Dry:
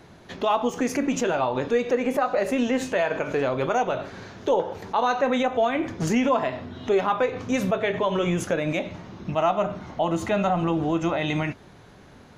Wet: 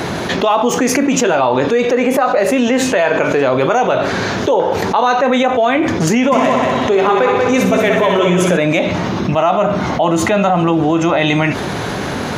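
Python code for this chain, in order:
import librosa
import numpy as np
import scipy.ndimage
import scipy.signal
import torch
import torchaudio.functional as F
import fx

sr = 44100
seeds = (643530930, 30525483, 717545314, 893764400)

y = fx.highpass(x, sr, hz=150.0, slope=6)
y = fx.echo_heads(y, sr, ms=62, heads='first and third', feedback_pct=56, wet_db=-6.5, at=(6.31, 8.56), fade=0.02)
y = fx.env_flatten(y, sr, amount_pct=70)
y = F.gain(torch.from_numpy(y), 6.5).numpy()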